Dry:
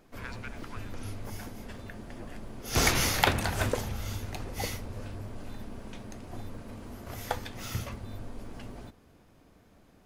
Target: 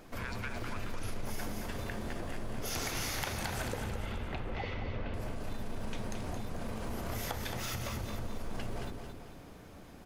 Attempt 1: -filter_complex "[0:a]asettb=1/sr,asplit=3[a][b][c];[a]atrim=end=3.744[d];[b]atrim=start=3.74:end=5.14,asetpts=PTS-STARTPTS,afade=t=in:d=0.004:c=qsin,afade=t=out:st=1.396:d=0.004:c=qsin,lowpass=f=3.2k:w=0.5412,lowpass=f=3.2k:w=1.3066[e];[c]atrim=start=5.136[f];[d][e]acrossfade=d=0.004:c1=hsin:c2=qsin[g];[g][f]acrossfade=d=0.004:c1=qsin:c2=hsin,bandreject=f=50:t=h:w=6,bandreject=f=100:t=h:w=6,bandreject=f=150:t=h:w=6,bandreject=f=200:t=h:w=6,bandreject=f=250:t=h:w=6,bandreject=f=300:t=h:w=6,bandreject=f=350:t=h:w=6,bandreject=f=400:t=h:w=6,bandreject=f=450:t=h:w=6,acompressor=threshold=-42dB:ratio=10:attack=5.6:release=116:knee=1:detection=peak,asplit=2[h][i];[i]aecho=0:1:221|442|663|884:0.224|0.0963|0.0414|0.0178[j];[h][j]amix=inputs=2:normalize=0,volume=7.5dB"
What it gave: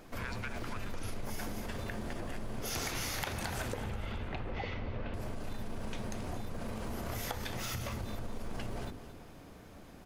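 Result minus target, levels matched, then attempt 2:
echo-to-direct -6.5 dB
-filter_complex "[0:a]asettb=1/sr,asplit=3[a][b][c];[a]atrim=end=3.744[d];[b]atrim=start=3.74:end=5.14,asetpts=PTS-STARTPTS,afade=t=in:d=0.004:c=qsin,afade=t=out:st=1.396:d=0.004:c=qsin,lowpass=f=3.2k:w=0.5412,lowpass=f=3.2k:w=1.3066[e];[c]atrim=start=5.136[f];[d][e]acrossfade=d=0.004:c1=hsin:c2=qsin[g];[g][f]acrossfade=d=0.004:c1=qsin:c2=hsin,bandreject=f=50:t=h:w=6,bandreject=f=100:t=h:w=6,bandreject=f=150:t=h:w=6,bandreject=f=200:t=h:w=6,bandreject=f=250:t=h:w=6,bandreject=f=300:t=h:w=6,bandreject=f=350:t=h:w=6,bandreject=f=400:t=h:w=6,bandreject=f=450:t=h:w=6,acompressor=threshold=-42dB:ratio=10:attack=5.6:release=116:knee=1:detection=peak,asplit=2[h][i];[i]aecho=0:1:221|442|663|884|1105:0.473|0.203|0.0875|0.0376|0.0162[j];[h][j]amix=inputs=2:normalize=0,volume=7.5dB"

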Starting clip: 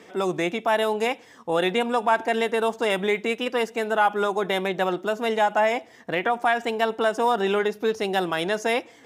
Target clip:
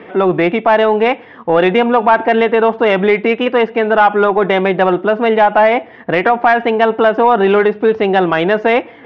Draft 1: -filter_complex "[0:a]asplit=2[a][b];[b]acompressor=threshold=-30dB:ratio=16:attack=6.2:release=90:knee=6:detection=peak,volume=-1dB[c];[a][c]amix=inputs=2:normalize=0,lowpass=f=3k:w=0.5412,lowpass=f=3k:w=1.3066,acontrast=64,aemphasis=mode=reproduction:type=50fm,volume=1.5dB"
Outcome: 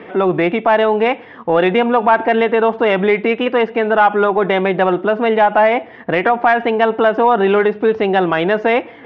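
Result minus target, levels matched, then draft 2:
compressor: peak gain reduction +9.5 dB
-filter_complex "[0:a]asplit=2[a][b];[b]acompressor=threshold=-19.5dB:ratio=16:attack=6.2:release=90:knee=6:detection=peak,volume=-1dB[c];[a][c]amix=inputs=2:normalize=0,lowpass=f=3k:w=0.5412,lowpass=f=3k:w=1.3066,acontrast=64,aemphasis=mode=reproduction:type=50fm,volume=1.5dB"

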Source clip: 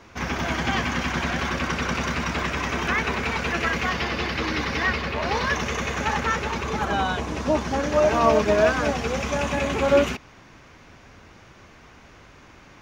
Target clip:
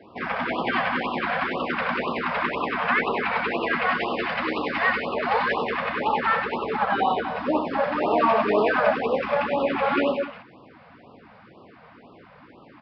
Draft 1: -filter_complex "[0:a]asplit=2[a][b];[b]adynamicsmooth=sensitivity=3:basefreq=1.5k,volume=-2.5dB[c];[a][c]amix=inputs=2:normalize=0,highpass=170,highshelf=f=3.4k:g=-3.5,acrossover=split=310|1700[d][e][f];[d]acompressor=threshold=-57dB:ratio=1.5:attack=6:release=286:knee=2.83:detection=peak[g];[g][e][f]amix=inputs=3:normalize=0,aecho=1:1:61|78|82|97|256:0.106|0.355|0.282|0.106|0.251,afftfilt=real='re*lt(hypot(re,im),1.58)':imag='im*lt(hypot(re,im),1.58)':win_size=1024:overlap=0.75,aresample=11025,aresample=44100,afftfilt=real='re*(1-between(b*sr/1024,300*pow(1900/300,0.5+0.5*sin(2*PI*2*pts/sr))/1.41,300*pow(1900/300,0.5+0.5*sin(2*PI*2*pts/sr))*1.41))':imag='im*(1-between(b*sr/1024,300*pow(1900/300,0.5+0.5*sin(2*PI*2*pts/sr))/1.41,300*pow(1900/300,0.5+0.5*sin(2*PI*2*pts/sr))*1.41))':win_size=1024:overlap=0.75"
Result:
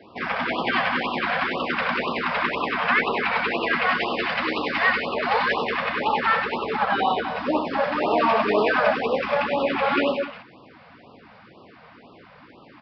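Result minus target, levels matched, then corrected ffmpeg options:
8000 Hz band +6.0 dB
-filter_complex "[0:a]asplit=2[a][b];[b]adynamicsmooth=sensitivity=3:basefreq=1.5k,volume=-2.5dB[c];[a][c]amix=inputs=2:normalize=0,highpass=170,highshelf=f=3.4k:g=-13.5,acrossover=split=310|1700[d][e][f];[d]acompressor=threshold=-57dB:ratio=1.5:attack=6:release=286:knee=2.83:detection=peak[g];[g][e][f]amix=inputs=3:normalize=0,aecho=1:1:61|78|82|97|256:0.106|0.355|0.282|0.106|0.251,afftfilt=real='re*lt(hypot(re,im),1.58)':imag='im*lt(hypot(re,im),1.58)':win_size=1024:overlap=0.75,aresample=11025,aresample=44100,afftfilt=real='re*(1-between(b*sr/1024,300*pow(1900/300,0.5+0.5*sin(2*PI*2*pts/sr))/1.41,300*pow(1900/300,0.5+0.5*sin(2*PI*2*pts/sr))*1.41))':imag='im*(1-between(b*sr/1024,300*pow(1900/300,0.5+0.5*sin(2*PI*2*pts/sr))/1.41,300*pow(1900/300,0.5+0.5*sin(2*PI*2*pts/sr))*1.41))':win_size=1024:overlap=0.75"

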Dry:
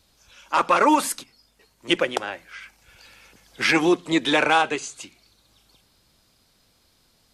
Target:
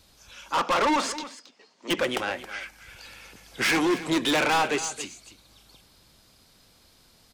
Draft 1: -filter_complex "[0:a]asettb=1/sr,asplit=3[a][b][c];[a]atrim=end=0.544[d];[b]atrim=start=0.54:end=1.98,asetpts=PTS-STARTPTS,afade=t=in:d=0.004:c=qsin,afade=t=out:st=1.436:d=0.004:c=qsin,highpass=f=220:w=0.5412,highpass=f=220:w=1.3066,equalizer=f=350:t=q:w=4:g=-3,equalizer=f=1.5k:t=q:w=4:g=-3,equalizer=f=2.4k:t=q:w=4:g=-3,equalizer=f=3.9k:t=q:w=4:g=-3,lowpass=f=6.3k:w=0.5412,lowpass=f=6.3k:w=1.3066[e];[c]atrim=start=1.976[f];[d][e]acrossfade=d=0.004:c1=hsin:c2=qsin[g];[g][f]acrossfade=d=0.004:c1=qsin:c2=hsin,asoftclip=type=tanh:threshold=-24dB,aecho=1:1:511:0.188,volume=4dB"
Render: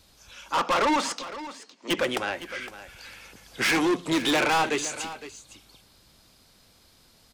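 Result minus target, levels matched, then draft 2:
echo 0.239 s late
-filter_complex "[0:a]asettb=1/sr,asplit=3[a][b][c];[a]atrim=end=0.544[d];[b]atrim=start=0.54:end=1.98,asetpts=PTS-STARTPTS,afade=t=in:d=0.004:c=qsin,afade=t=out:st=1.436:d=0.004:c=qsin,highpass=f=220:w=0.5412,highpass=f=220:w=1.3066,equalizer=f=350:t=q:w=4:g=-3,equalizer=f=1.5k:t=q:w=4:g=-3,equalizer=f=2.4k:t=q:w=4:g=-3,equalizer=f=3.9k:t=q:w=4:g=-3,lowpass=f=6.3k:w=0.5412,lowpass=f=6.3k:w=1.3066[e];[c]atrim=start=1.976[f];[d][e]acrossfade=d=0.004:c1=hsin:c2=qsin[g];[g][f]acrossfade=d=0.004:c1=qsin:c2=hsin,asoftclip=type=tanh:threshold=-24dB,aecho=1:1:272:0.188,volume=4dB"

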